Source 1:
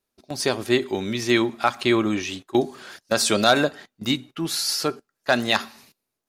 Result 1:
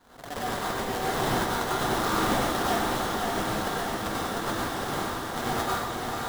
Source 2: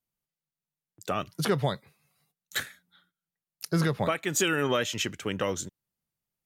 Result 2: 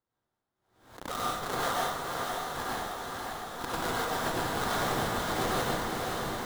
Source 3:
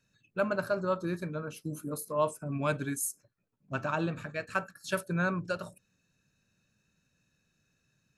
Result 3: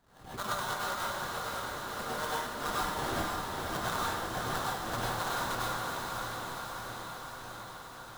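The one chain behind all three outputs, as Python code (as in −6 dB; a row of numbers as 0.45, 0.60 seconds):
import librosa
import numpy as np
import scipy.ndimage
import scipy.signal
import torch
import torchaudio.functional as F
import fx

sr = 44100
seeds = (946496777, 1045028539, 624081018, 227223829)

p1 = scipy.signal.sosfilt(scipy.signal.butter(2, 880.0, 'highpass', fs=sr, output='sos'), x)
p2 = p1 + 0.65 * np.pad(p1, (int(4.2 * sr / 1000.0), 0))[:len(p1)]
p3 = fx.over_compress(p2, sr, threshold_db=-31.0, ratio=-0.5)
p4 = fx.sample_hold(p3, sr, seeds[0], rate_hz=2500.0, jitter_pct=20)
p5 = p4 + fx.echo_diffused(p4, sr, ms=556, feedback_pct=72, wet_db=-3.5, dry=0)
p6 = fx.rev_plate(p5, sr, seeds[1], rt60_s=0.95, hf_ratio=0.8, predelay_ms=85, drr_db=-5.5)
p7 = fx.pre_swell(p6, sr, db_per_s=93.0)
y = F.gain(torch.from_numpy(p7), -4.5).numpy()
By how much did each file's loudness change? 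−5.0, −3.0, −1.5 LU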